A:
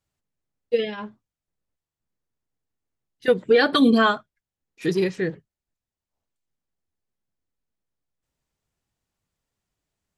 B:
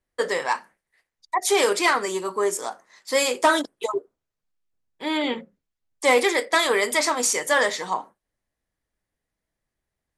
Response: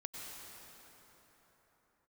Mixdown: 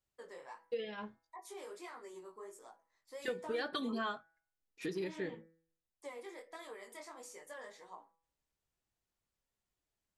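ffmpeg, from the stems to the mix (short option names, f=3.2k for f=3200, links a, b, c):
-filter_complex "[0:a]acompressor=threshold=-30dB:ratio=3,volume=-3dB[a];[1:a]acompressor=threshold=-21dB:ratio=4,flanger=delay=17:depth=6.2:speed=1.5,equalizer=f=4.4k:t=o:w=3:g=-7.5,volume=-15dB[b];[a][b]amix=inputs=2:normalize=0,equalizer=f=150:t=o:w=1.2:g=-5,bandreject=f=164:t=h:w=4,bandreject=f=328:t=h:w=4,bandreject=f=492:t=h:w=4,bandreject=f=656:t=h:w=4,bandreject=f=820:t=h:w=4,bandreject=f=984:t=h:w=4,bandreject=f=1.148k:t=h:w=4,bandreject=f=1.312k:t=h:w=4,bandreject=f=1.476k:t=h:w=4,bandreject=f=1.64k:t=h:w=4,bandreject=f=1.804k:t=h:w=4,bandreject=f=1.968k:t=h:w=4,bandreject=f=2.132k:t=h:w=4,bandreject=f=2.296k:t=h:w=4,flanger=delay=5.3:depth=1.1:regen=-72:speed=0.53:shape=triangular"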